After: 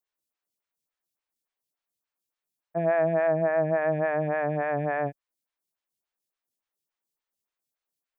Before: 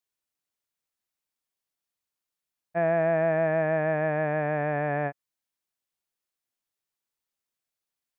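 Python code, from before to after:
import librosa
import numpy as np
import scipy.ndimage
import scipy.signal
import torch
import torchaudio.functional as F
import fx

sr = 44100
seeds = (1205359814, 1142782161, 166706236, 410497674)

y = fx.lowpass(x, sr, hz=fx.line((3.27, 1900.0), (3.8, 2600.0)), slope=12, at=(3.27, 3.8), fade=0.02)
y = fx.stagger_phaser(y, sr, hz=3.5)
y = y * 10.0 ** (2.5 / 20.0)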